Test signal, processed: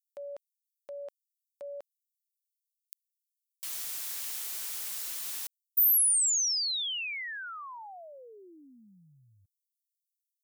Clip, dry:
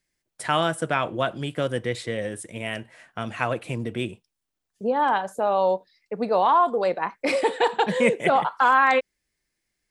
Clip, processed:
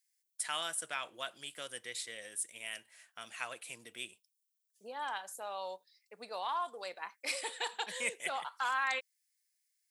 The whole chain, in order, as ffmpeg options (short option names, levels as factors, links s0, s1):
-af "aderivative"